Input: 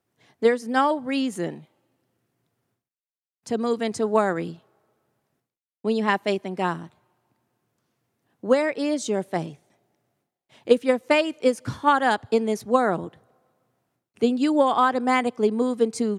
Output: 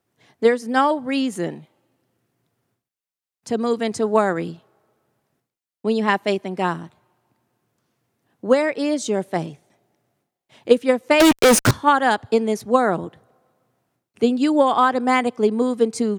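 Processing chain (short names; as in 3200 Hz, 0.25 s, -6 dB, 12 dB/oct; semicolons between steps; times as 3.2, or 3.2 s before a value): 11.2–11.71 fuzz box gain 43 dB, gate -42 dBFS; gain +3 dB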